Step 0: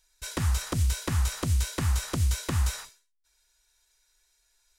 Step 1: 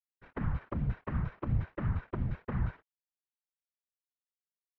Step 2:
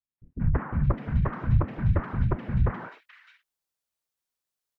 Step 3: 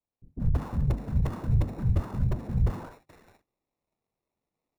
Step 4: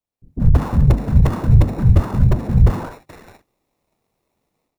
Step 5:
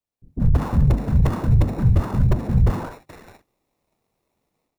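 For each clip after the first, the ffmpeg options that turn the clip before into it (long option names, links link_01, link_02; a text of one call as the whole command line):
ffmpeg -i in.wav -af "aeval=exprs='val(0)*gte(abs(val(0)),0.0224)':channel_layout=same,afftfilt=real='hypot(re,im)*cos(2*PI*random(0))':imag='hypot(re,im)*sin(2*PI*random(1))':win_size=512:overlap=0.75,lowpass=frequency=1900:width=0.5412,lowpass=frequency=1900:width=1.3066" out.wav
ffmpeg -i in.wav -filter_complex "[0:a]acrossover=split=250|2300[link_01][link_02][link_03];[link_02]adelay=180[link_04];[link_03]adelay=610[link_05];[link_01][link_04][link_05]amix=inputs=3:normalize=0,volume=9dB" out.wav
ffmpeg -i in.wav -filter_complex "[0:a]bandreject=frequency=50:width_type=h:width=6,bandreject=frequency=100:width_type=h:width=6,bandreject=frequency=150:width_type=h:width=6,acrossover=split=140|1300[link_01][link_02][link_03];[link_02]asoftclip=type=tanh:threshold=-31dB[link_04];[link_03]acrusher=samples=28:mix=1:aa=0.000001[link_05];[link_01][link_04][link_05]amix=inputs=3:normalize=0" out.wav
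ffmpeg -i in.wav -af "dynaudnorm=framelen=210:gausssize=3:maxgain=13dB,volume=1.5dB" out.wav
ffmpeg -i in.wav -af "alimiter=limit=-6.5dB:level=0:latency=1:release=42,volume=-2dB" out.wav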